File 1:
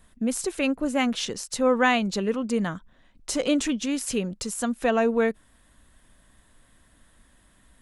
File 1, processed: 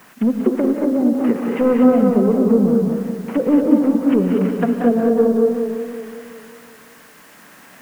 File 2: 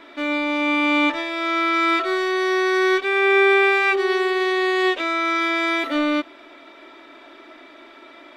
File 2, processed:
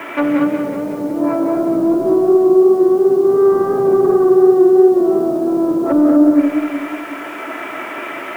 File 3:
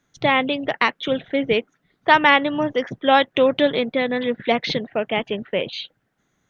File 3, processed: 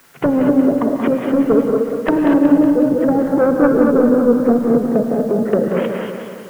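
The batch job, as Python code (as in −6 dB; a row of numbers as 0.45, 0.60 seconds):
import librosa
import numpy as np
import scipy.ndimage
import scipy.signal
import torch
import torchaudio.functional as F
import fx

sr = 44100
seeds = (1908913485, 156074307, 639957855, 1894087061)

p1 = fx.cvsd(x, sr, bps=16000)
p2 = fx.env_lowpass_down(p1, sr, base_hz=540.0, full_db=-21.5)
p3 = scipy.signal.sosfilt(scipy.signal.butter(2, 2500.0, 'lowpass', fs=sr, output='sos'), p2)
p4 = fx.env_lowpass_down(p3, sr, base_hz=450.0, full_db=-24.5)
p5 = scipy.signal.sosfilt(scipy.signal.butter(4, 140.0, 'highpass', fs=sr, output='sos'), p4)
p6 = fx.low_shelf(p5, sr, hz=390.0, db=-7.0)
p7 = p6 * (1.0 - 0.32 / 2.0 + 0.32 / 2.0 * np.cos(2.0 * np.pi * 0.51 * (np.arange(len(p6)) / sr)))
p8 = fx.fold_sine(p7, sr, drive_db=6, ceiling_db=-17.0)
p9 = fx.dmg_noise_colour(p8, sr, seeds[0], colour='white', level_db=-60.0)
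p10 = p9 + fx.echo_single(p9, sr, ms=246, db=-11.0, dry=0)
p11 = fx.rev_gated(p10, sr, seeds[1], gate_ms=260, shape='rising', drr_db=3.0)
p12 = fx.echo_warbled(p11, sr, ms=184, feedback_pct=60, rate_hz=2.8, cents=96, wet_db=-7.5)
y = librosa.util.normalize(p12) * 10.0 ** (-1.5 / 20.0)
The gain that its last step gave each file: +7.0, +8.0, +7.5 decibels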